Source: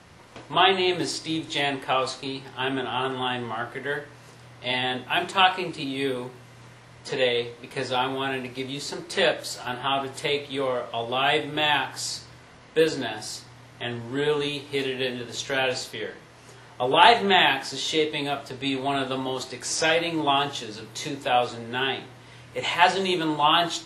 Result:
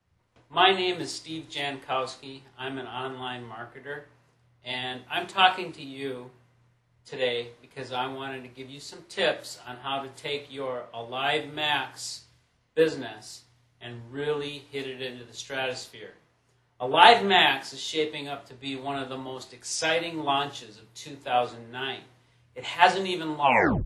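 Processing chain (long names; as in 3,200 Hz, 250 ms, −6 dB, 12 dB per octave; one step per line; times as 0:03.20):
turntable brake at the end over 0.43 s
multiband upward and downward expander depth 70%
level −5.5 dB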